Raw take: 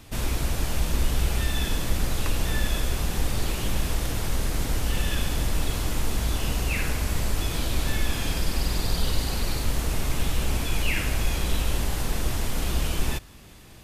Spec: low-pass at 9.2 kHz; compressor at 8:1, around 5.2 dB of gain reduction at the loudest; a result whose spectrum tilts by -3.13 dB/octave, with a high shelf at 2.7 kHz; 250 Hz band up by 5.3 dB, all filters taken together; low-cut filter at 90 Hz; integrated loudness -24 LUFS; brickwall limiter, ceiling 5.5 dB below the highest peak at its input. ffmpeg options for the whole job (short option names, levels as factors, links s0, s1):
-af "highpass=90,lowpass=9200,equalizer=f=250:t=o:g=7,highshelf=f=2700:g=7.5,acompressor=threshold=0.0398:ratio=8,volume=2.66,alimiter=limit=0.178:level=0:latency=1"